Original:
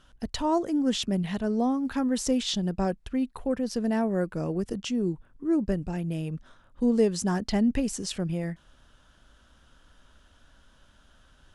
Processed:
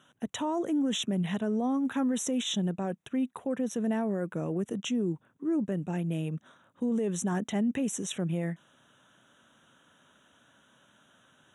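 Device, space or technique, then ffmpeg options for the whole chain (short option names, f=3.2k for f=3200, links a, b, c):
PA system with an anti-feedback notch: -af "highpass=f=130:w=0.5412,highpass=f=130:w=1.3066,asuperstop=centerf=4700:order=12:qfactor=2.7,alimiter=limit=-22.5dB:level=0:latency=1:release=25"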